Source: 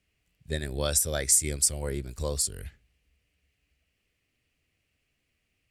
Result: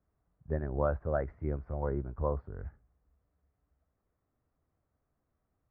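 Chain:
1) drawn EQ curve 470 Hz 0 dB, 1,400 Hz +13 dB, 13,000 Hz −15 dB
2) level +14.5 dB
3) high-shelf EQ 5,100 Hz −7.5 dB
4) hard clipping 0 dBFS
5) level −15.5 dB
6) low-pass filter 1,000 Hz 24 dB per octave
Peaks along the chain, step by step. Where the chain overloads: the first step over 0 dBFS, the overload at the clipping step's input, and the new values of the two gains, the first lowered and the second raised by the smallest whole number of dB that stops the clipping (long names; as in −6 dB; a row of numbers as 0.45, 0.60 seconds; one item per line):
−8.5, +6.0, +5.0, 0.0, −15.5, −16.5 dBFS
step 2, 5.0 dB
step 2 +9.5 dB, step 5 −10.5 dB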